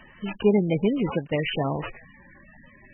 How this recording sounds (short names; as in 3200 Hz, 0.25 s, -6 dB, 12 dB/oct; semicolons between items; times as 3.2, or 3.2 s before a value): aliases and images of a low sample rate 8600 Hz, jitter 0%; MP3